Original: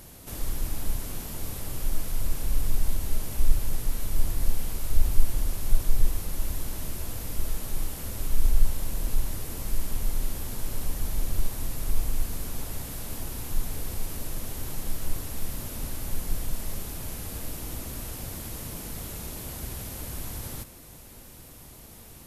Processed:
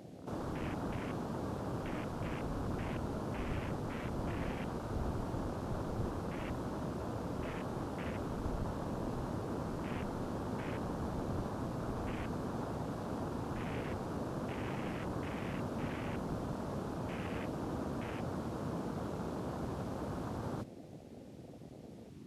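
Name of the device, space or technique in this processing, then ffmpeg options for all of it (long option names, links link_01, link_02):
over-cleaned archive recording: -af "highpass=150,lowpass=5300,afwtdn=0.00447,volume=4.5dB"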